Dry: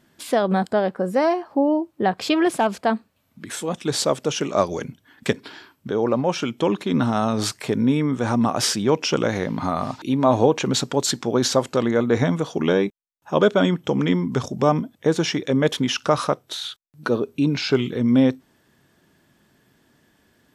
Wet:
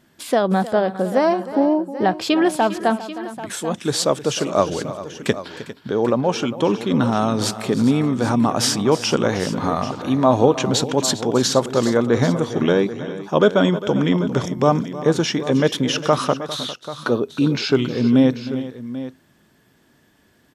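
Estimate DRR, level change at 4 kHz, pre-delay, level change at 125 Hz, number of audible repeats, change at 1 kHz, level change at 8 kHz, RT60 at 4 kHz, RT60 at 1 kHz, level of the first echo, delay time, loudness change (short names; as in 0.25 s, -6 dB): none, +2.0 dB, none, +2.5 dB, 3, +2.5 dB, +2.5 dB, none, none, -15.5 dB, 0.311 s, +2.0 dB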